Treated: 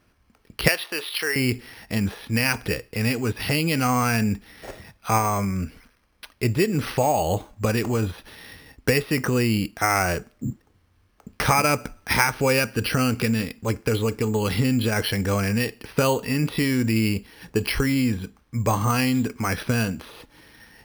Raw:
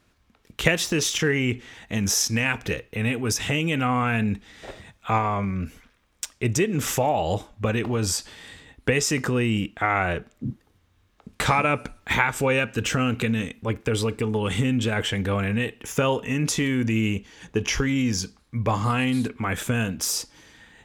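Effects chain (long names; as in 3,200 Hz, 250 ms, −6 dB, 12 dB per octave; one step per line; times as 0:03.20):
0:00.68–0:01.36: high-pass filter 640 Hz 12 dB per octave
bad sample-rate conversion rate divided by 6×, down filtered, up hold
level +1.5 dB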